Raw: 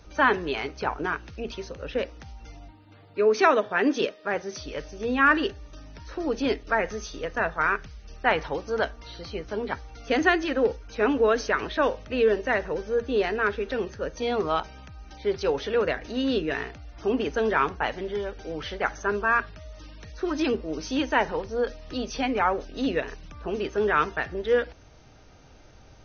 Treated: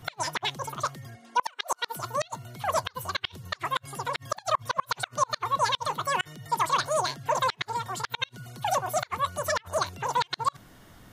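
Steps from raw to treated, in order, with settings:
gate with flip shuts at −13 dBFS, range −33 dB
wrong playback speed 33 rpm record played at 78 rpm

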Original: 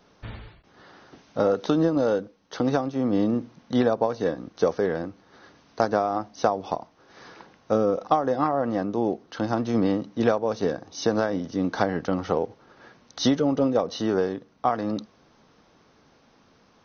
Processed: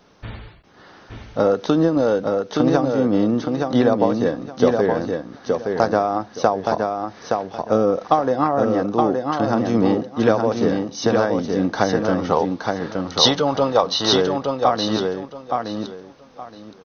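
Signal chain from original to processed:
0:12.32–0:14.13: graphic EQ with 10 bands 250 Hz −8 dB, 1,000 Hz +9 dB, 4,000 Hz +11 dB
on a send: repeating echo 870 ms, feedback 22%, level −4 dB
on the sum: level +4.5 dB

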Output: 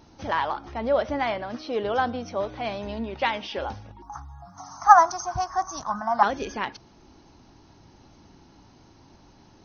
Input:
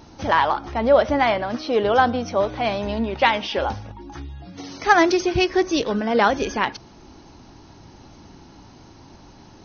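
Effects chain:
0:04.02–0:06.23: drawn EQ curve 140 Hz 0 dB, 250 Hz −8 dB, 480 Hz −27 dB, 710 Hz +10 dB, 1,200 Hz +15 dB, 2,600 Hz −22 dB, 4,200 Hz −9 dB, 6,900 Hz +12 dB
level −7.5 dB

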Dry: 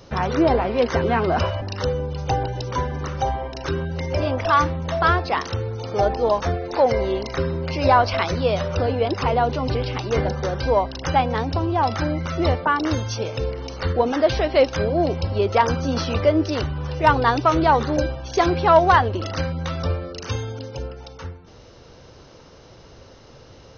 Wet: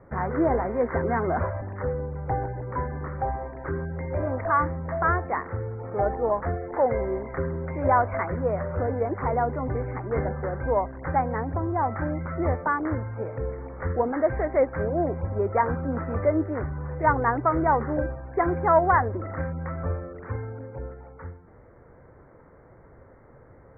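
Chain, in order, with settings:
Butterworth low-pass 2,100 Hz 96 dB per octave
level −5 dB

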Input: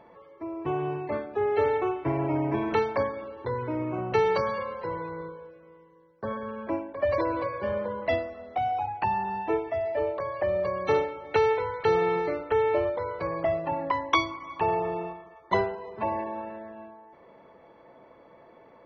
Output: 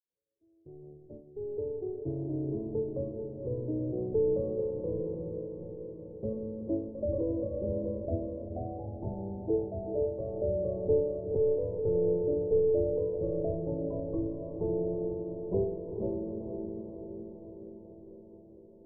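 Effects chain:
fade in at the beginning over 5.02 s
leveller curve on the samples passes 2
Butterworth low-pass 530 Hz 36 dB per octave
low-shelf EQ 64 Hz +11.5 dB
on a send: feedback delay with all-pass diffusion 453 ms, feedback 65%, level −6.5 dB
on the sum: level −8 dB

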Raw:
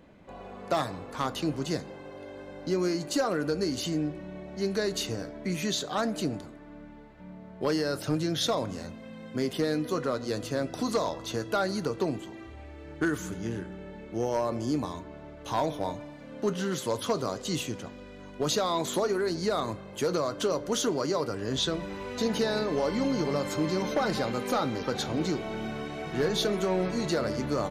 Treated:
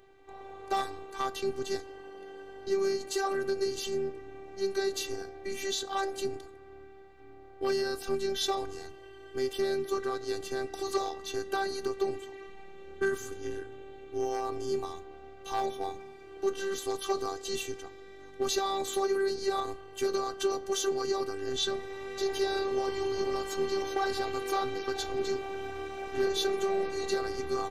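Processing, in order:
phases set to zero 390 Hz

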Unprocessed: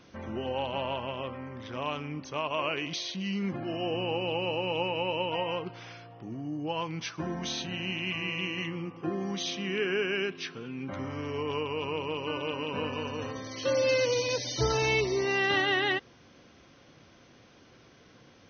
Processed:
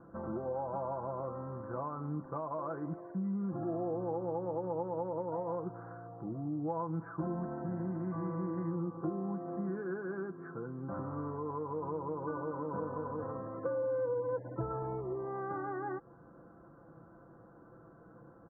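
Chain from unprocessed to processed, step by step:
Butterworth low-pass 1,500 Hz 72 dB per octave
downward compressor, threshold −35 dBFS, peak gain reduction 11.5 dB
comb filter 6 ms, depth 52%

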